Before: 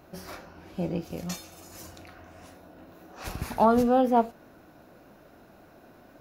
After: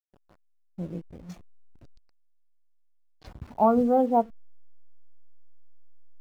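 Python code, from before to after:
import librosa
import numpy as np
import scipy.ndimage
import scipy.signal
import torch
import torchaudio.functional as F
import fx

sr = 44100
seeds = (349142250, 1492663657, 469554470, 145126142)

y = fx.delta_hold(x, sr, step_db=-32.0)
y = fx.peak_eq(y, sr, hz=4500.0, db=13.5, octaves=1.1, at=(1.84, 3.25), fade=0.02)
y = fx.spectral_expand(y, sr, expansion=1.5)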